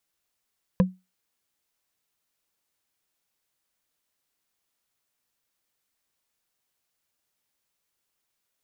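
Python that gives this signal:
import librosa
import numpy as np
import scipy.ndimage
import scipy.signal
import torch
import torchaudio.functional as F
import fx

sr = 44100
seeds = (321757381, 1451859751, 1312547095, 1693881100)

y = fx.strike_wood(sr, length_s=0.45, level_db=-12, body='bar', hz=185.0, decay_s=0.23, tilt_db=5.5, modes=5)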